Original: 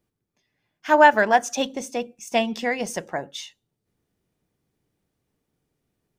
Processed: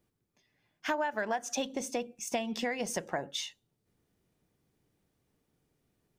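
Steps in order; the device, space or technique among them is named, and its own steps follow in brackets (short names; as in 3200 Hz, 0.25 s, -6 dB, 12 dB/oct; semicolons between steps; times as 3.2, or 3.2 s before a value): serial compression, leveller first (compressor 2.5:1, threshold -18 dBFS, peak gain reduction 7 dB; compressor 5:1, threshold -30 dBFS, peak gain reduction 14 dB)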